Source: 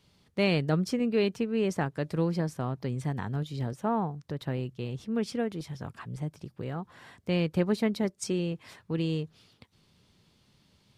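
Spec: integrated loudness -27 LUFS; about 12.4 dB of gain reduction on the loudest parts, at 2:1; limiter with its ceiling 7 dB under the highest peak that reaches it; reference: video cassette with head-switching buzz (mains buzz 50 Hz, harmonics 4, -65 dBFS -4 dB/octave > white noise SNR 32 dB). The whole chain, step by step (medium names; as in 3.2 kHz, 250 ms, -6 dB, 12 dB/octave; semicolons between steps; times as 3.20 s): compression 2:1, threshold -45 dBFS; peak limiter -33.5 dBFS; mains buzz 50 Hz, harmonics 4, -65 dBFS -4 dB/octave; white noise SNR 32 dB; trim +16.5 dB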